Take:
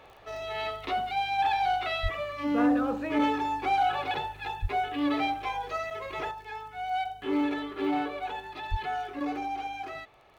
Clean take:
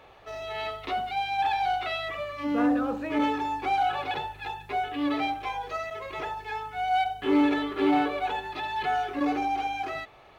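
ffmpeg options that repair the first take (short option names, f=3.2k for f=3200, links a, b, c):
-filter_complex "[0:a]adeclick=t=4,asplit=3[a][b][c];[a]afade=t=out:st=2.02:d=0.02[d];[b]highpass=f=140:w=0.5412,highpass=f=140:w=1.3066,afade=t=in:st=2.02:d=0.02,afade=t=out:st=2.14:d=0.02[e];[c]afade=t=in:st=2.14:d=0.02[f];[d][e][f]amix=inputs=3:normalize=0,asplit=3[g][h][i];[g]afade=t=out:st=4.61:d=0.02[j];[h]highpass=f=140:w=0.5412,highpass=f=140:w=1.3066,afade=t=in:st=4.61:d=0.02,afade=t=out:st=4.73:d=0.02[k];[i]afade=t=in:st=4.73:d=0.02[l];[j][k][l]amix=inputs=3:normalize=0,asplit=3[m][n][o];[m]afade=t=out:st=8.7:d=0.02[p];[n]highpass=f=140:w=0.5412,highpass=f=140:w=1.3066,afade=t=in:st=8.7:d=0.02,afade=t=out:st=8.82:d=0.02[q];[o]afade=t=in:st=8.82:d=0.02[r];[p][q][r]amix=inputs=3:normalize=0,asetnsamples=n=441:p=0,asendcmd='6.31 volume volume 5.5dB',volume=0dB"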